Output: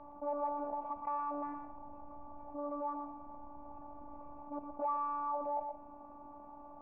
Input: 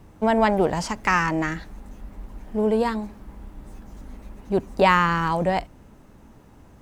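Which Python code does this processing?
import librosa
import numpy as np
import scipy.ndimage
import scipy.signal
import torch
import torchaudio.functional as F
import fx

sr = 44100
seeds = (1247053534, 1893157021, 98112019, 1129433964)

y = fx.highpass(x, sr, hz=73.0, slope=6)
y = fx.low_shelf(y, sr, hz=320.0, db=5.0)
y = 10.0 ** (-16.5 / 20.0) * np.tanh(y / 10.0 ** (-16.5 / 20.0))
y = fx.formant_cascade(y, sr, vowel='a')
y = fx.robotise(y, sr, hz=290.0)
y = fx.air_absorb(y, sr, metres=450.0)
y = y + 10.0 ** (-11.5 / 20.0) * np.pad(y, (int(118 * sr / 1000.0), 0))[:len(y)]
y = fx.env_flatten(y, sr, amount_pct=50)
y = y * librosa.db_to_amplitude(1.0)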